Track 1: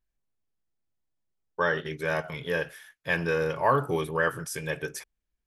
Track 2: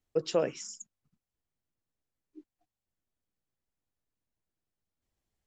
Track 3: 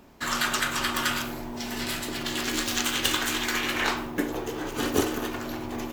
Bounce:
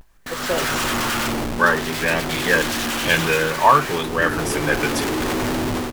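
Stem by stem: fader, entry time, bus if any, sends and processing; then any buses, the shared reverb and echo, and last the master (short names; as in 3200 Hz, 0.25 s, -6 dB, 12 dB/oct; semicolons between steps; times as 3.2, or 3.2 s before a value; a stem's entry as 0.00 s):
-2.0 dB, 0.00 s, no send, upward compressor, threshold -32 dBFS; LFO bell 1.1 Hz 880–3600 Hz +11 dB
-5.0 dB, 0.15 s, no send, dry
0.0 dB, 0.05 s, no send, compressor 4:1, threshold -28 dBFS, peak gain reduction 9.5 dB; Schmitt trigger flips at -38 dBFS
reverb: off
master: AGC gain up to 11 dB; vibrato 0.58 Hz 63 cents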